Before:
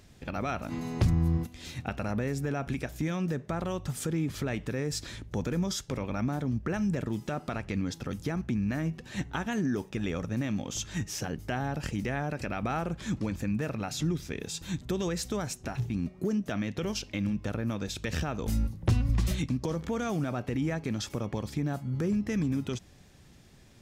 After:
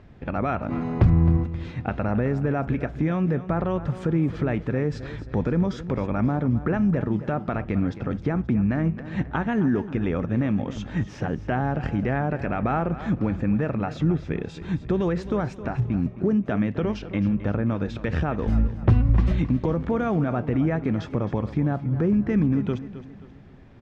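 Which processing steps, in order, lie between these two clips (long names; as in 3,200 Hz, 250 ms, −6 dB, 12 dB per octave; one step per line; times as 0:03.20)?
low-pass filter 1,700 Hz 12 dB per octave
repeating echo 265 ms, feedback 41%, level −14 dB
level +7.5 dB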